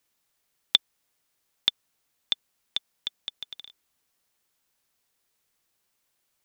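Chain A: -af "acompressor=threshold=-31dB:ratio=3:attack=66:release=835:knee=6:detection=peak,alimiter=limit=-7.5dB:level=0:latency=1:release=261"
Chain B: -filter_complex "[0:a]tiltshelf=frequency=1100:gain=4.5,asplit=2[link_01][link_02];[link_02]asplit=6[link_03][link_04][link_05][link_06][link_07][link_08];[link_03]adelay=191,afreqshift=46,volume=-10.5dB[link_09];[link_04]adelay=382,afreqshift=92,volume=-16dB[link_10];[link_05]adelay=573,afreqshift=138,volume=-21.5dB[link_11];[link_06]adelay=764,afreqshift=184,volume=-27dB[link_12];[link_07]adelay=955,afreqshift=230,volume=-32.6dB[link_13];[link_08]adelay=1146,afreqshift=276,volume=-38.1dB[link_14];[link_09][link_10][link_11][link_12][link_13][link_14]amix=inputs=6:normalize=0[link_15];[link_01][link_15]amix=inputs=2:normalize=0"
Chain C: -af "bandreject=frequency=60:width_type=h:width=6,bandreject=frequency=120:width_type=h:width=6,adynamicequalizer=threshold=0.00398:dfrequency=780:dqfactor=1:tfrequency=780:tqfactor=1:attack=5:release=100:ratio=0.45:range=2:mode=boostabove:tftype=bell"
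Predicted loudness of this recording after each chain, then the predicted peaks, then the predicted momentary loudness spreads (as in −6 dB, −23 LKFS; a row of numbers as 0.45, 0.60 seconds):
−33.5, −34.0, −29.0 LKFS; −7.5, −4.0, −1.5 dBFS; 10, 18, 16 LU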